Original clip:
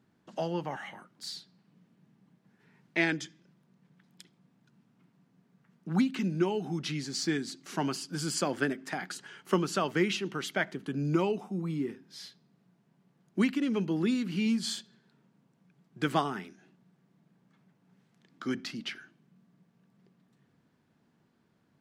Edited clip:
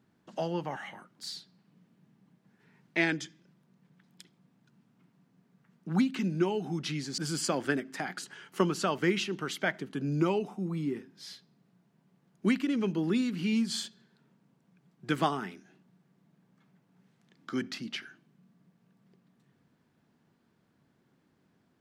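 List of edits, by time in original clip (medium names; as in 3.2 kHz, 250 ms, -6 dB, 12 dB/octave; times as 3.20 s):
7.18–8.11 s: delete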